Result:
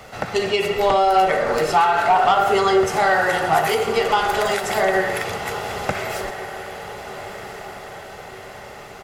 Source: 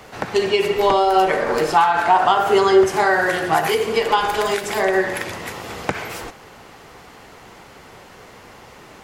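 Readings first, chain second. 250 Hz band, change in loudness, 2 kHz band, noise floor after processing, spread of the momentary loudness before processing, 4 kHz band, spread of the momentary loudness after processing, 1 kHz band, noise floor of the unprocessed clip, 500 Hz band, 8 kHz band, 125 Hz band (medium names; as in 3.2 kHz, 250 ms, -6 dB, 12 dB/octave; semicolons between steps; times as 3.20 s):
-3.5 dB, -1.0 dB, 0.0 dB, -38 dBFS, 14 LU, -0.5 dB, 20 LU, 0.0 dB, -44 dBFS, -1.5 dB, +0.5 dB, +1.0 dB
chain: comb 1.5 ms, depth 38%; saturation -7.5 dBFS, distortion -20 dB; echo that smears into a reverb 1386 ms, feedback 52%, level -11.5 dB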